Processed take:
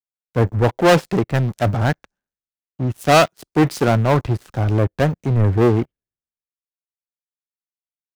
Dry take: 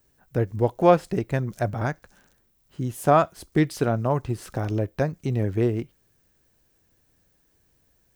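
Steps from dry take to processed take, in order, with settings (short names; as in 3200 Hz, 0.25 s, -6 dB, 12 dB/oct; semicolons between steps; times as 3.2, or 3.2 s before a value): high shelf 6600 Hz -10.5 dB; sample leveller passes 5; three-band expander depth 100%; gain -6 dB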